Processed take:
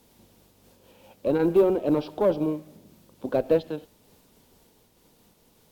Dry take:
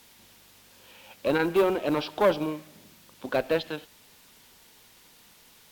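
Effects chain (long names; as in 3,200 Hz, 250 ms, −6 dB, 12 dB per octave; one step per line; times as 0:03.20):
drawn EQ curve 490 Hz 0 dB, 1,800 Hz −15 dB, 12,000 Hz −10 dB
amplitude modulation by smooth noise, depth 50%
level +6.5 dB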